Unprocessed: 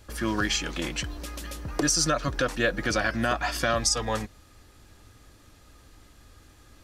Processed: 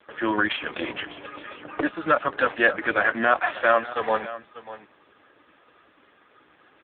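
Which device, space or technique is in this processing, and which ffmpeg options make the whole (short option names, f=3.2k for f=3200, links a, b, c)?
satellite phone: -af "highpass=380,lowpass=3.2k,aecho=1:1:591:0.168,volume=8.5dB" -ar 8000 -c:a libopencore_amrnb -b:a 5150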